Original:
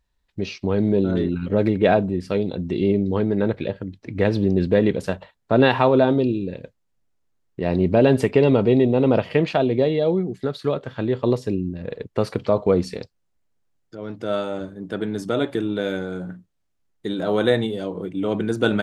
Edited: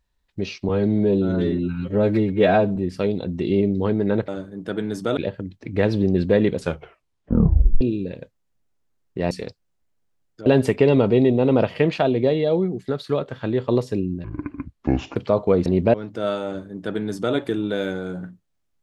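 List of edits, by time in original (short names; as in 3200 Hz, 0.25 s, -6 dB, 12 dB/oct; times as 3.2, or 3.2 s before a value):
0.69–2.07 stretch 1.5×
4.99 tape stop 1.24 s
7.73–8.01 swap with 12.85–14
11.79–12.35 speed 61%
14.52–15.41 copy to 3.59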